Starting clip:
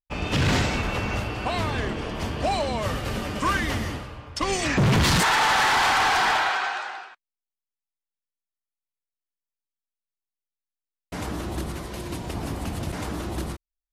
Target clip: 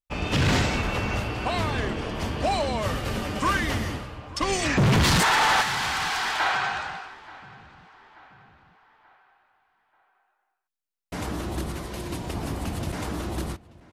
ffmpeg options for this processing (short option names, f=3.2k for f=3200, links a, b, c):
-filter_complex "[0:a]asettb=1/sr,asplit=3[a][b][c];[a]atrim=end=5.614[d];[b]atrim=start=5.61:end=6.4,asetpts=PTS-STARTPTS,afade=t=in:d=0.004:c=qsin,afade=t=out:st=0.786:d=0.004:c=qsin,acrossover=split=280|1100|3300[e][f][g][h];[e]acompressor=threshold=-47dB:ratio=4[i];[f]acompressor=threshold=-37dB:ratio=4[j];[g]acompressor=threshold=-29dB:ratio=4[k];[h]acompressor=threshold=-32dB:ratio=4[l];[i][j][k][l]amix=inputs=4:normalize=0[m];[c]atrim=start=6.396[n];[d][m]acrossfade=d=0.004:c1=hsin:c2=qsin[o];[o][n]acrossfade=d=0.004:c1=qsin:c2=hsin,asplit=2[p][q];[q]adelay=883,lowpass=f=3.2k:p=1,volume=-21dB,asplit=2[r][s];[s]adelay=883,lowpass=f=3.2k:p=1,volume=0.5,asplit=2[t][u];[u]adelay=883,lowpass=f=3.2k:p=1,volume=0.5,asplit=2[v][w];[w]adelay=883,lowpass=f=3.2k:p=1,volume=0.5[x];[p][r][t][v][x]amix=inputs=5:normalize=0"